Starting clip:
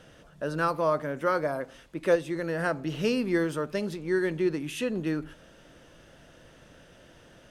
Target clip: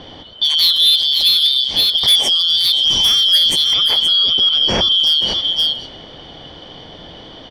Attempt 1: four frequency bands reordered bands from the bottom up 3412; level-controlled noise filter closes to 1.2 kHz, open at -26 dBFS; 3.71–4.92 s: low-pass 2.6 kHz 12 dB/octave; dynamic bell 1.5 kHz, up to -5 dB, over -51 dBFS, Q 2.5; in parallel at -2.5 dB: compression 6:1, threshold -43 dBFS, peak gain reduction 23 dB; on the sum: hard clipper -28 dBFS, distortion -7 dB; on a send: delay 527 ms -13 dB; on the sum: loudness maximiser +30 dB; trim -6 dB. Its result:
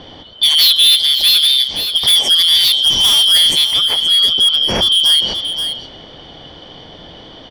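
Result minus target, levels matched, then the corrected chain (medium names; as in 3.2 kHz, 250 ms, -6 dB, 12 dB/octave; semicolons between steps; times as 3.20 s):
hard clipper: distortion +8 dB; compression: peak gain reduction +5 dB
four frequency bands reordered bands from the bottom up 3412; level-controlled noise filter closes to 1.2 kHz, open at -26 dBFS; 3.71–4.92 s: low-pass 2.6 kHz 12 dB/octave; dynamic bell 1.5 kHz, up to -5 dB, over -51 dBFS, Q 2.5; in parallel at -2.5 dB: compression 6:1, threshold -37 dBFS, peak gain reduction 18 dB; on the sum: hard clipper -20 dBFS, distortion -15 dB; on a send: delay 527 ms -13 dB; on the sum: loudness maximiser +30 dB; trim -6 dB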